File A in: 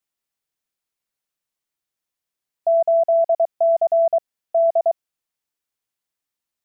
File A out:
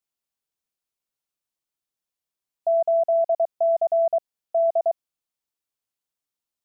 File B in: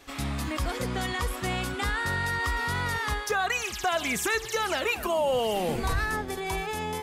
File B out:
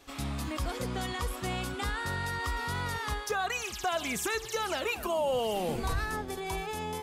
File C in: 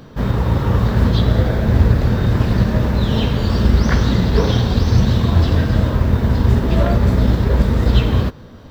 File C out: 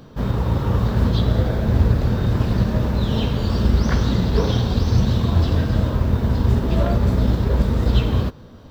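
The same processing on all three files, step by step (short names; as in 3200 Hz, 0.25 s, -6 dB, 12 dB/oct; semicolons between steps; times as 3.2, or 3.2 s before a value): bell 1900 Hz -4 dB 0.63 oct; gain -3.5 dB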